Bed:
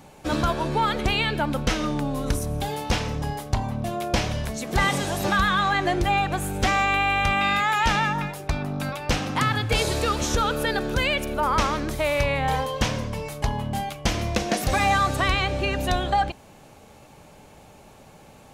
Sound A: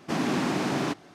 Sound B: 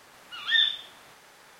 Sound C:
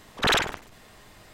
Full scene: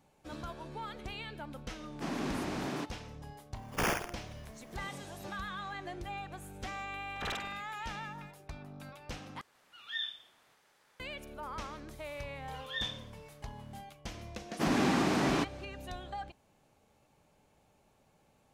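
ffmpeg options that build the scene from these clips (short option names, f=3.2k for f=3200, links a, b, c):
-filter_complex "[1:a]asplit=2[a][b];[3:a]asplit=2[c][d];[2:a]asplit=2[e][f];[0:a]volume=-19.5dB[g];[c]acrusher=samples=11:mix=1:aa=0.000001[h];[g]asplit=2[i][j];[i]atrim=end=9.414[k];[e]atrim=end=1.59,asetpts=PTS-STARTPTS,volume=-15dB[l];[j]atrim=start=10.996[m];[a]atrim=end=1.14,asetpts=PTS-STARTPTS,volume=-9.5dB,afade=t=in:d=0.004:c=hsin,afade=t=out:st=1.136:d=0.004:c=hsin,adelay=1920[n];[h]atrim=end=1.33,asetpts=PTS-STARTPTS,volume=-9dB,afade=t=in:d=0.004:c=hsin,afade=t=out:st=1.326:d=0.004:c=hsin,adelay=3550[o];[d]atrim=end=1.33,asetpts=PTS-STARTPTS,volume=-17.5dB,afade=t=in:d=0.004:c=hsin,afade=t=out:st=1.326:d=0.004:c=hsin,adelay=307818S[p];[f]atrim=end=1.59,asetpts=PTS-STARTPTS,volume=-15dB,afade=t=in:d=0.004:c=hsin,afade=t=out:st=1.586:d=0.004:c=hsin,adelay=12220[q];[b]atrim=end=1.14,asetpts=PTS-STARTPTS,volume=-2dB,afade=t=in:d=0.004:c=hsin,afade=t=out:st=1.136:d=0.004:c=hsin,adelay=14510[r];[k][l]acrossfade=d=0.004:c1=hsin:c2=hsin[s];[s][m]acrossfade=d=0.004:c1=hsin:c2=hsin[t];[t][n][o][p][q][r]amix=inputs=6:normalize=0"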